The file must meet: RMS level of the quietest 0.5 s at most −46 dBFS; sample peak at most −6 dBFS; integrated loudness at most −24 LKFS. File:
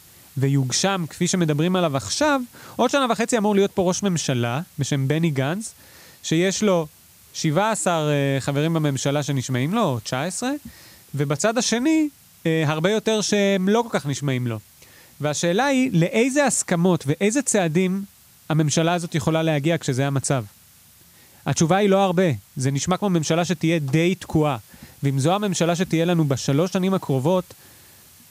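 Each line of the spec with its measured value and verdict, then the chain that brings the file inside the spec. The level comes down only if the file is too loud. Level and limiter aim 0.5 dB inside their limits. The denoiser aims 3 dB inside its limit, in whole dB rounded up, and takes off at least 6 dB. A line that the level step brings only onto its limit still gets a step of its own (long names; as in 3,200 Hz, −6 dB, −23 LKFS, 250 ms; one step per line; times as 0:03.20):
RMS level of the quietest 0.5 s −51 dBFS: in spec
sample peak −7.0 dBFS: in spec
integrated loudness −21.5 LKFS: out of spec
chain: level −3 dB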